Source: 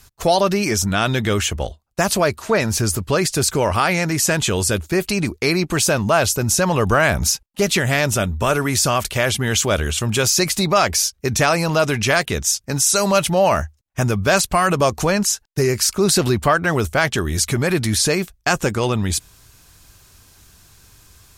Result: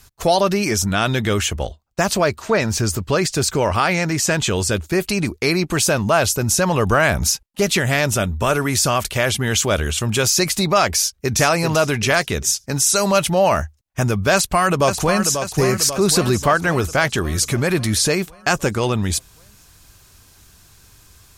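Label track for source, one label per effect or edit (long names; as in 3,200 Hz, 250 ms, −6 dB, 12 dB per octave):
1.650000	4.840000	parametric band 11,000 Hz −11 dB 0.35 octaves
10.970000	11.370000	delay throw 390 ms, feedback 35%, level −6 dB
14.330000	15.340000	delay throw 540 ms, feedback 60%, level −7.5 dB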